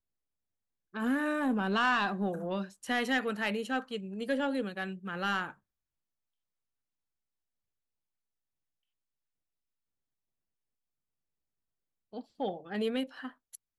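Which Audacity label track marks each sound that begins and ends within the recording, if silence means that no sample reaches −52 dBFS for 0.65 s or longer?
0.940000	5.530000	sound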